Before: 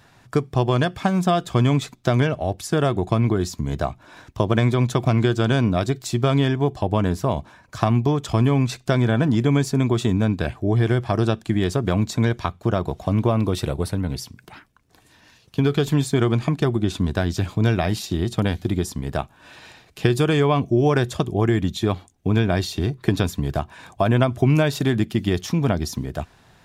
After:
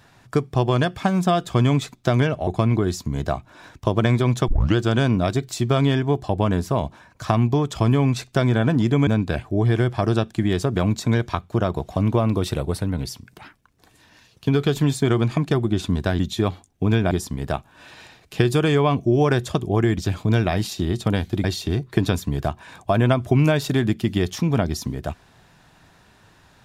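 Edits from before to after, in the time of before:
2.47–3 cut
5.01 tape start 0.28 s
9.6–10.18 cut
17.3–18.76 swap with 21.63–22.55

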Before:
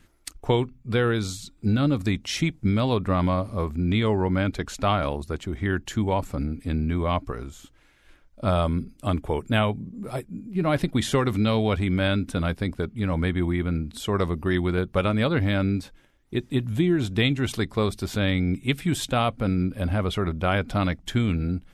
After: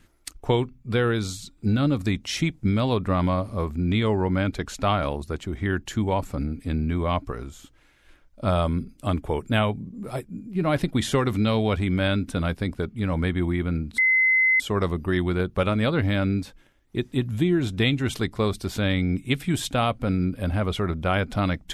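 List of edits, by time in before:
13.98 add tone 2050 Hz -16 dBFS 0.62 s

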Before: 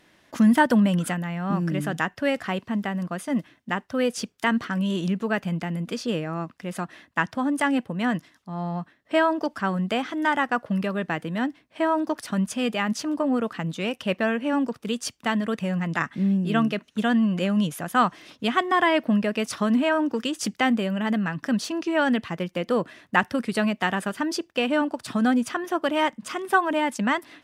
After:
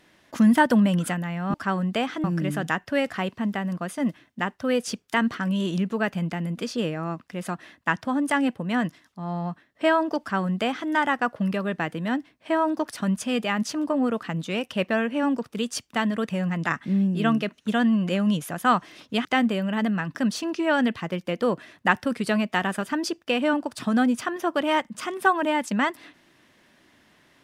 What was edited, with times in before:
9.5–10.2 copy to 1.54
18.55–20.53 cut

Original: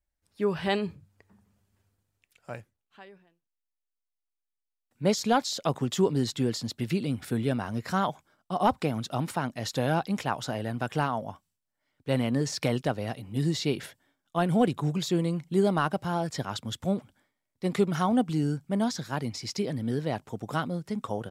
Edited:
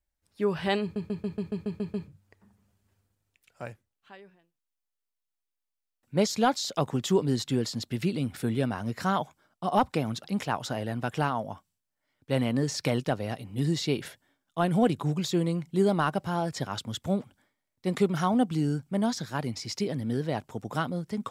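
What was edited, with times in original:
0.82 stutter 0.14 s, 9 plays
9.12–10.02 cut

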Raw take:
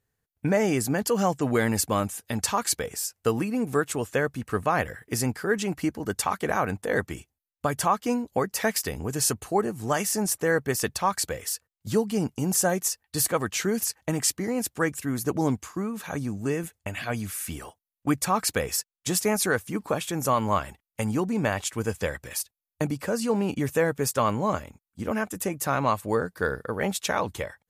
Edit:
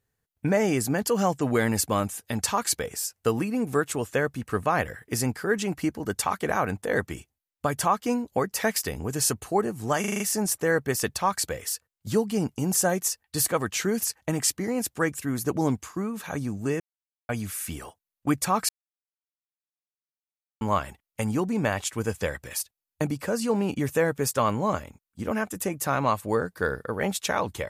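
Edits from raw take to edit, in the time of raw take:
10 stutter 0.04 s, 6 plays
16.6–17.09 mute
18.49–20.41 mute

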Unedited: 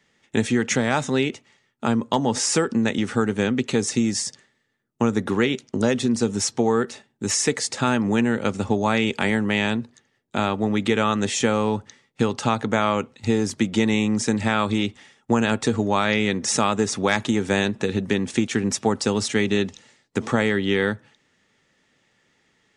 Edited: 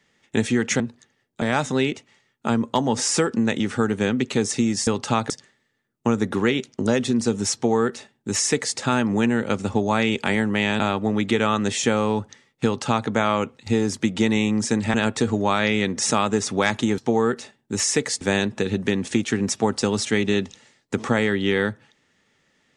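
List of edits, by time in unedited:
6.49–7.72 copy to 17.44
9.75–10.37 move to 0.8
12.22–12.65 copy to 4.25
14.51–15.4 cut

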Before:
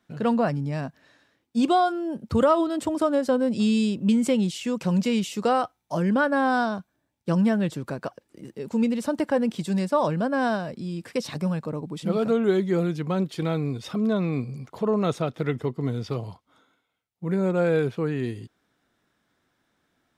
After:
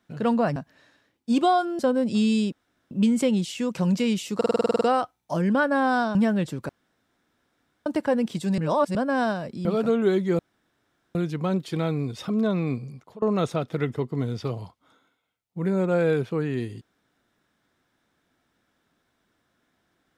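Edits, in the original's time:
0.56–0.83 cut
2.06–3.24 cut
3.97 insert room tone 0.39 s
5.42 stutter 0.05 s, 10 plays
6.76–7.39 cut
7.93–9.1 room tone
9.82–10.19 reverse
10.89–12.07 cut
12.81 insert room tone 0.76 s
14.39–14.88 fade out, to -22.5 dB

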